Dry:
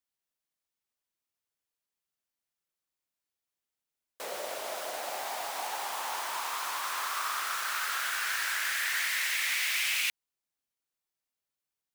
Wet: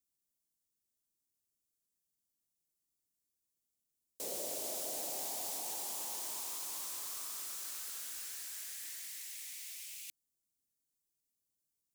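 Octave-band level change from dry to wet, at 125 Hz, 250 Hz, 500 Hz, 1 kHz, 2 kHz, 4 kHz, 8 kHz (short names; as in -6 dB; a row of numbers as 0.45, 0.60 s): n/a, +1.0 dB, -7.0 dB, -17.0 dB, -24.0 dB, -12.5 dB, -3.5 dB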